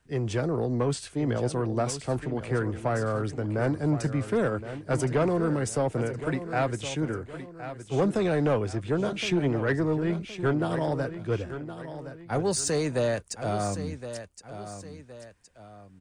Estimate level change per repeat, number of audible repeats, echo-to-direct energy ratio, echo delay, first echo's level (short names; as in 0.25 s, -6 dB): -8.0 dB, 2, -11.0 dB, 1.067 s, -11.5 dB